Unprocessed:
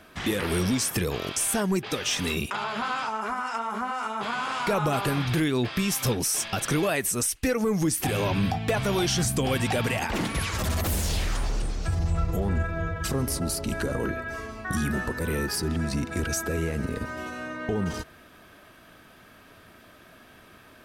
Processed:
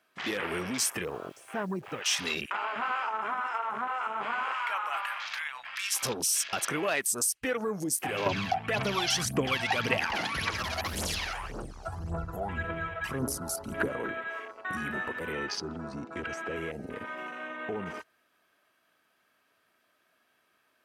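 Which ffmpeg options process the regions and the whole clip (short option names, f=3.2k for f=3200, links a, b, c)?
-filter_complex "[0:a]asettb=1/sr,asplit=3[a][b][c];[a]atrim=end=1.054[d];[b]atrim=start=1.05:end=2.02,asetpts=PTS-STARTPTS,afade=t=in:d=0.004:c=qsin,afade=t=out:st=0.966:d=0.004:c=qsin,lowpass=f=1.8k:p=1,asubboost=boost=9:cutoff=180,acrusher=bits=8:dc=4:mix=0:aa=0.000001[e];[c]atrim=start=2.016[f];[d][e]acrossfade=d=0.004:c1=hsin:c2=qsin[g];[g][f]acrossfade=d=0.004:c1=qsin:c2=hsin,asettb=1/sr,asplit=3[h][i][j];[h]atrim=end=4.534[k];[i]atrim=start=4.53:end=5.96,asetpts=PTS-STARTPTS,afade=t=in:d=0.004:c=qsin,afade=t=out:st=1.426:d=0.004:c=qsin,highpass=f=890:w=0.5412,highpass=f=890:w=1.3066,aeval=exprs='val(0)+0.00708*(sin(2*PI*60*n/s)+sin(2*PI*2*60*n/s)/2+sin(2*PI*3*60*n/s)/3+sin(2*PI*4*60*n/s)/4+sin(2*PI*5*60*n/s)/5)':c=same[l];[j]atrim=start=5.956[m];[k][l]acrossfade=d=0.004:c1=hsin:c2=qsin[n];[n][m]acrossfade=d=0.004:c1=qsin:c2=hsin,asettb=1/sr,asplit=3[o][p][q];[o]atrim=end=8.264[r];[p]atrim=start=8.26:end=13.9,asetpts=PTS-STARTPTS,afade=t=in:d=0.004:c=qsin,afade=t=out:st=5.636:d=0.004:c=qsin,acrossover=split=5900[s][t];[t]acompressor=threshold=-38dB:ratio=4:attack=1:release=60[u];[s][u]amix=inputs=2:normalize=0,equalizer=f=11k:w=3.5:g=9,aphaser=in_gain=1:out_gain=1:delay=1.5:decay=0.65:speed=1.8:type=triangular[v];[q]atrim=start=13.896[w];[r][v]acrossfade=d=0.004:c1=hsin:c2=qsin[x];[x][w]acrossfade=d=0.004:c1=qsin:c2=hsin,asettb=1/sr,asplit=3[y][z][aa];[y]atrim=end=15.324[ab];[z]atrim=start=15.32:end=16.56,asetpts=PTS-STARTPTS,afade=t=in:d=0.004:c=qsin,afade=t=out:st=1.236:d=0.004:c=qsin,lowpass=6.3k,bandreject=f=1.7k:w=21[ac];[aa]atrim=start=16.556[ad];[ab][ac]acrossfade=d=0.004:c1=hsin:c2=qsin[ae];[ae][ad]acrossfade=d=0.004:c1=qsin:c2=hsin,highpass=f=710:p=1,bandreject=f=3.6k:w=23,afwtdn=0.0141"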